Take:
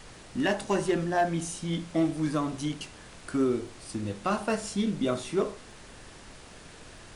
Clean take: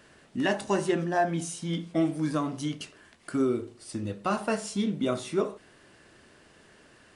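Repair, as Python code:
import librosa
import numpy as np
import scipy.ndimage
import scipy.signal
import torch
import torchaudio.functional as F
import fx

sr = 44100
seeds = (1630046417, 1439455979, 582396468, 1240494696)

y = fx.fix_declip(x, sr, threshold_db=-17.5)
y = fx.fix_declick_ar(y, sr, threshold=6.5)
y = fx.noise_reduce(y, sr, print_start_s=6.36, print_end_s=6.86, reduce_db=9.0)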